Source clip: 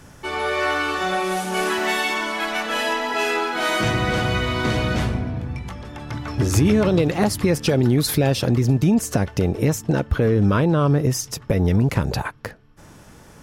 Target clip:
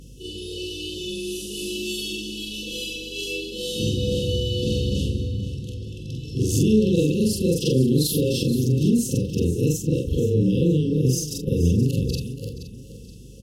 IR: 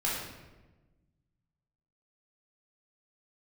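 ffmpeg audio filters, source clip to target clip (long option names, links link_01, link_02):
-filter_complex "[0:a]afftfilt=real='re':imag='-im':win_size=4096:overlap=0.75,afftfilt=real='re*(1-between(b*sr/4096,540,2600))':imag='im*(1-between(b*sr/4096,540,2600))':win_size=4096:overlap=0.75,highpass=frequency=40:poles=1,aeval=exprs='val(0)+0.00447*(sin(2*PI*50*n/s)+sin(2*PI*2*50*n/s)/2+sin(2*PI*3*50*n/s)/3+sin(2*PI*4*50*n/s)/4+sin(2*PI*5*50*n/s)/5)':channel_layout=same,asplit=2[link_01][link_02];[link_02]aecho=0:1:475|950|1425|1900:0.224|0.0806|0.029|0.0104[link_03];[link_01][link_03]amix=inputs=2:normalize=0,volume=3dB"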